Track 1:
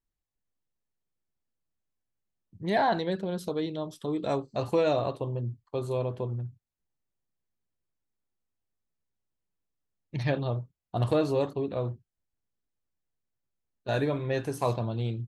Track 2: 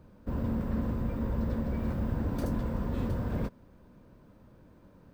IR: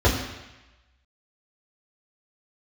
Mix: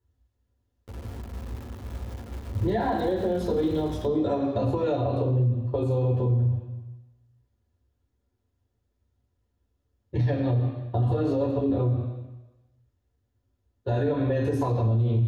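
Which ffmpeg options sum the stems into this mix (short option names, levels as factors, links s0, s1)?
-filter_complex "[0:a]acompressor=threshold=0.0158:ratio=2.5,volume=0.596,asplit=2[s0][s1];[s1]volume=0.631[s2];[1:a]acrossover=split=230[s3][s4];[s4]acompressor=threshold=0.0141:ratio=4[s5];[s3][s5]amix=inputs=2:normalize=0,acrusher=bits=4:mix=0:aa=0.000001,adelay=600,volume=0.168,asplit=2[s6][s7];[s7]volume=0.0708[s8];[2:a]atrim=start_sample=2205[s9];[s2][s8]amix=inputs=2:normalize=0[s10];[s10][s9]afir=irnorm=-1:irlink=0[s11];[s0][s6][s11]amix=inputs=3:normalize=0,alimiter=limit=0.141:level=0:latency=1:release=92"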